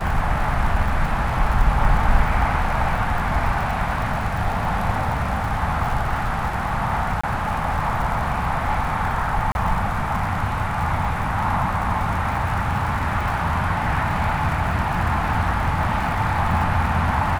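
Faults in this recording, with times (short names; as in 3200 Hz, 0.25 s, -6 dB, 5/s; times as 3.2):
crackle 88/s -28 dBFS
7.21–7.24 gap 25 ms
9.52–9.55 gap 31 ms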